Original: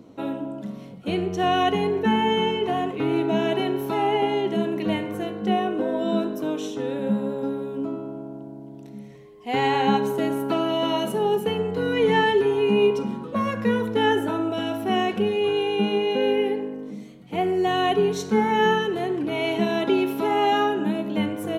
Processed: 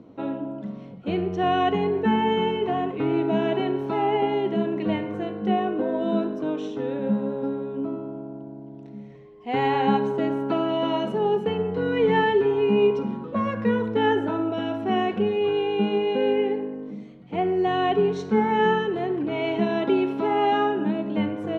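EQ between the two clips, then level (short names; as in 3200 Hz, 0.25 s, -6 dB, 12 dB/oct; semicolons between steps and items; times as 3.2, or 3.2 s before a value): air absorption 99 m; high shelf 4000 Hz -9.5 dB; 0.0 dB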